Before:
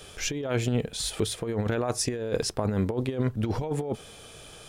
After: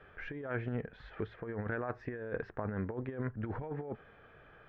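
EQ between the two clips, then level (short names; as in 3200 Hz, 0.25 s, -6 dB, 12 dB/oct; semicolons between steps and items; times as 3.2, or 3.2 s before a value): ladder low-pass 1900 Hz, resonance 60%; air absorption 79 m; 0.0 dB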